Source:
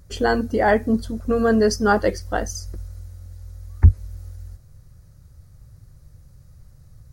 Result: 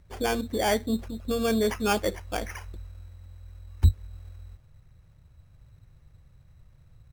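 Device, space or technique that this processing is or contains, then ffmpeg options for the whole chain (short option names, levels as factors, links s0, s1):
crushed at another speed: -af "asetrate=35280,aresample=44100,acrusher=samples=14:mix=1:aa=0.000001,asetrate=55125,aresample=44100,volume=0.422"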